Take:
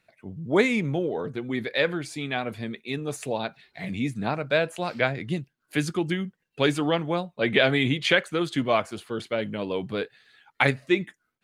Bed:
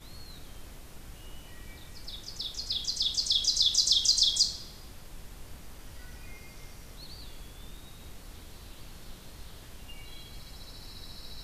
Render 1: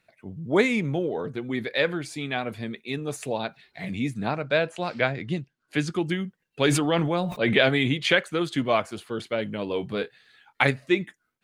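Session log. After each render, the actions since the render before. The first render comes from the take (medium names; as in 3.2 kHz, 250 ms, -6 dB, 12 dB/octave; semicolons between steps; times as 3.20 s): 4.33–5.93 s: low-pass 7.3 kHz; 6.61–7.69 s: decay stretcher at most 32 dB/s; 9.66–10.64 s: doubling 24 ms -10 dB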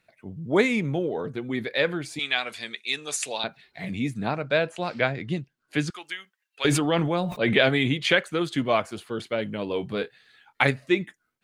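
2.19–3.44 s: frequency weighting ITU-R 468; 5.90–6.65 s: high-pass 1.2 kHz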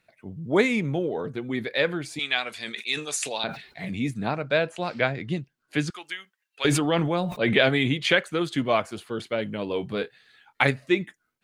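2.53–4.11 s: decay stretcher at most 110 dB/s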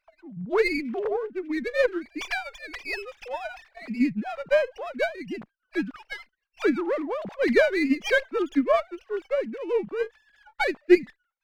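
formants replaced by sine waves; sliding maximum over 5 samples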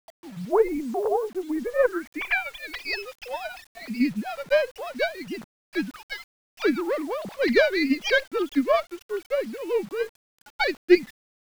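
low-pass sweep 840 Hz -> 4.8 kHz, 1.55–2.87 s; word length cut 8-bit, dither none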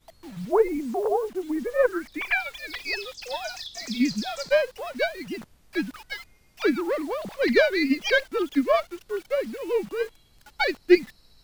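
add bed -13.5 dB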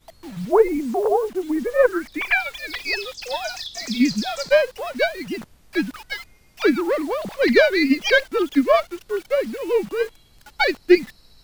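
trim +5 dB; peak limiter -3 dBFS, peak gain reduction 3 dB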